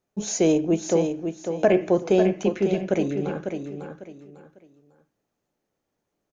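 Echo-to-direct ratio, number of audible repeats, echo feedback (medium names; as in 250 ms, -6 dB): -6.5 dB, 3, 27%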